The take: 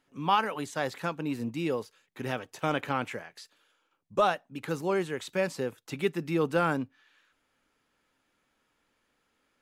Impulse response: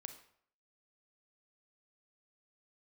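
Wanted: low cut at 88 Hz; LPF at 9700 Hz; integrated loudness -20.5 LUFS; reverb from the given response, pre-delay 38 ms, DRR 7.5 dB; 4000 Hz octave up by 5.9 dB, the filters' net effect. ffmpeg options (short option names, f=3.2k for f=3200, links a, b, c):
-filter_complex "[0:a]highpass=88,lowpass=9.7k,equalizer=f=4k:t=o:g=8,asplit=2[a][b];[1:a]atrim=start_sample=2205,adelay=38[c];[b][c]afir=irnorm=-1:irlink=0,volume=-2.5dB[d];[a][d]amix=inputs=2:normalize=0,volume=9dB"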